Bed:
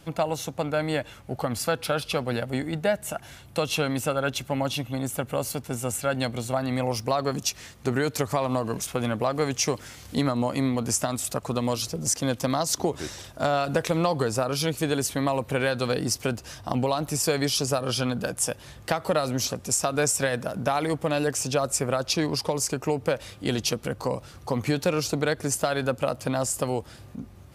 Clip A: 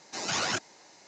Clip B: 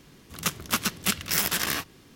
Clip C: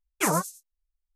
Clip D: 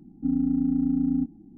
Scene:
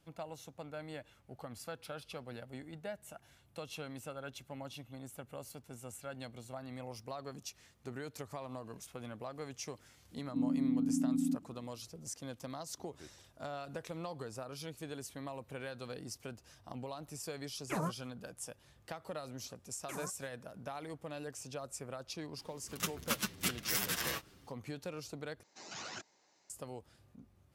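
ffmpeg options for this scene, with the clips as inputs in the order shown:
ffmpeg -i bed.wav -i cue0.wav -i cue1.wav -i cue2.wav -i cue3.wav -filter_complex "[3:a]asplit=2[link_01][link_02];[0:a]volume=-19dB[link_03];[4:a]asuperpass=centerf=270:order=4:qfactor=0.71[link_04];[link_01]bass=frequency=250:gain=7,treble=frequency=4000:gain=-11[link_05];[link_02]alimiter=limit=-20.5dB:level=0:latency=1:release=71[link_06];[2:a]asplit=2[link_07][link_08];[link_08]adelay=7.8,afreqshift=-2[link_09];[link_07][link_09]amix=inputs=2:normalize=1[link_10];[link_03]asplit=2[link_11][link_12];[link_11]atrim=end=25.434[link_13];[1:a]atrim=end=1.07,asetpts=PTS-STARTPTS,volume=-16dB[link_14];[link_12]atrim=start=26.496[link_15];[link_04]atrim=end=1.57,asetpts=PTS-STARTPTS,volume=-8.5dB,afade=type=in:duration=0.004:curve=hsin,afade=type=out:start_time=1.566:duration=0.004:curve=hsin,adelay=10110[link_16];[link_05]atrim=end=1.15,asetpts=PTS-STARTPTS,volume=-13.5dB,afade=type=in:duration=0.004:curve=hsin,afade=type=out:start_time=1.146:duration=0.004:curve=hsin,adelay=17490[link_17];[link_06]atrim=end=1.15,asetpts=PTS-STARTPTS,volume=-15dB,afade=type=in:duration=0.004:curve=hsin,afade=type=out:start_time=1.146:duration=0.004:curve=hsin,adelay=19680[link_18];[link_10]atrim=end=2.15,asetpts=PTS-STARTPTS,volume=-6.5dB,afade=type=in:duration=0.004:curve=hsin,afade=type=out:start_time=2.146:duration=0.004:curve=hsin,adelay=22370[link_19];[link_13][link_14]acrossfade=duration=0.004:curve1=hsin:curve2=hsin[link_20];[link_20][link_15]acrossfade=duration=0.004:curve1=hsin:curve2=hsin[link_21];[link_21][link_16][link_17][link_18][link_19]amix=inputs=5:normalize=0" out.wav

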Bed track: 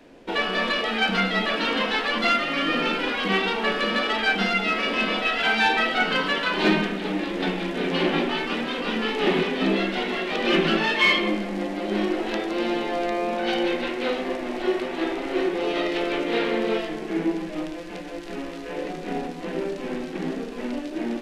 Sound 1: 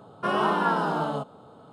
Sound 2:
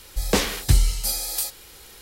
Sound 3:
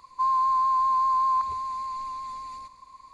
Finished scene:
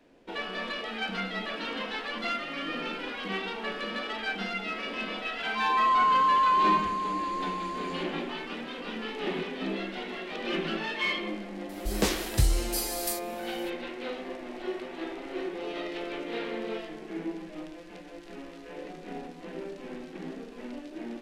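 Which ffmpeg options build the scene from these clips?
ffmpeg -i bed.wav -i cue0.wav -i cue1.wav -i cue2.wav -filter_complex "[0:a]volume=-10.5dB[link_01];[3:a]dynaudnorm=framelen=100:gausssize=7:maxgain=14dB,atrim=end=3.13,asetpts=PTS-STARTPTS,volume=-13.5dB,afade=type=in:duration=0.004:curve=hsin,afade=type=out:start_time=3.126:duration=0.004:curve=hsin,adelay=5360[link_02];[2:a]atrim=end=2.01,asetpts=PTS-STARTPTS,volume=-6.5dB,afade=type=in:duration=0.004:curve=hsin,afade=type=out:start_time=2.006:duration=0.004:curve=hsin,adelay=11690[link_03];[link_01][link_02][link_03]amix=inputs=3:normalize=0" out.wav

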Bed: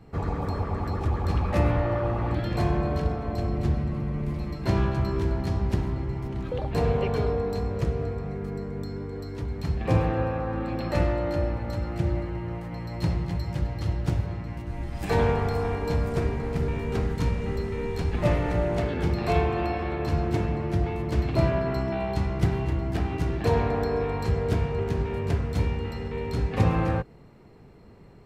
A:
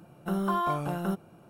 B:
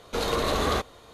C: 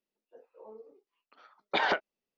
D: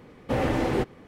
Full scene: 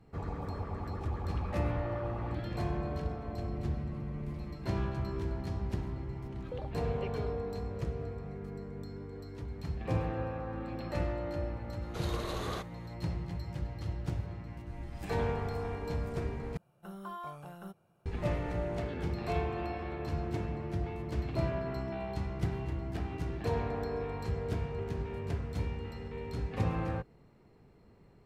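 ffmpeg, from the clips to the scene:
ffmpeg -i bed.wav -i cue0.wav -i cue1.wav -filter_complex "[0:a]volume=-9.5dB[link_01];[1:a]equalizer=frequency=280:width=2.3:gain=-10[link_02];[link_01]asplit=2[link_03][link_04];[link_03]atrim=end=16.574[link_05];[link_02]atrim=end=1.49,asetpts=PTS-STARTPTS,volume=-14dB[link_06];[link_04]atrim=start=18.056[link_07];[2:a]atrim=end=1.13,asetpts=PTS-STARTPTS,volume=-13dB,afade=type=in:duration=0.004:curve=hsin,afade=type=out:start_time=1.126:duration=0.004:curve=hsin,adelay=11810[link_08];[link_05][link_06]acrossfade=duration=0.004:curve1=hsin:curve2=hsin[link_09];[link_09][link_07]acrossfade=duration=0.004:curve1=hsin:curve2=hsin[link_10];[link_10][link_08]amix=inputs=2:normalize=0" out.wav

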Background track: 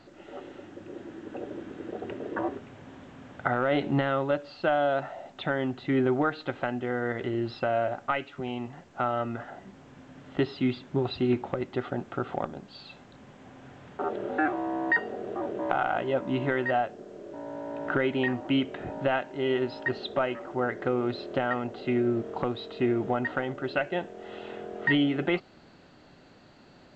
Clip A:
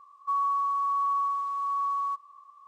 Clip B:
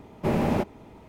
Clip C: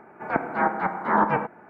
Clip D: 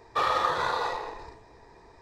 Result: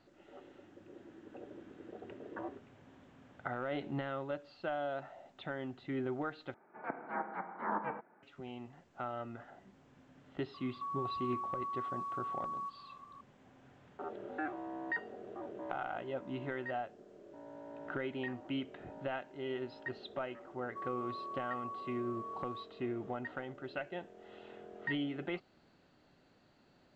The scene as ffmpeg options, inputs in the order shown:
ffmpeg -i bed.wav -i cue0.wav -i cue1.wav -i cue2.wav -filter_complex "[1:a]asplit=2[link_01][link_02];[0:a]volume=-12.5dB[link_03];[3:a]highpass=180,lowpass=2900[link_04];[link_01]acompressor=threshold=-38dB:ratio=6:attack=3.2:release=140:knee=1:detection=peak[link_05];[link_03]asplit=2[link_06][link_07];[link_06]atrim=end=6.544[link_08];[link_04]atrim=end=1.69,asetpts=PTS-STARTPTS,volume=-15.5dB[link_09];[link_07]atrim=start=8.226[link_10];[link_05]atrim=end=2.67,asetpts=PTS-STARTPTS,volume=-1.5dB,afade=type=in:duration=0.004:curve=hsin,afade=type=out:start_time=2.666:duration=0.004:curve=hsin,adelay=10540[link_11];[link_02]atrim=end=2.67,asetpts=PTS-STARTPTS,volume=-16.5dB,afade=type=in:duration=0.004:curve=hsin,afade=type=out:start_time=2.666:duration=0.004:curve=hsin,adelay=20480[link_12];[link_08][link_09]acrossfade=duration=0.004:curve1=hsin:curve2=hsin[link_13];[link_13][link_10]acrossfade=duration=0.004:curve1=hsin:curve2=hsin[link_14];[link_14][link_11][link_12]amix=inputs=3:normalize=0" out.wav

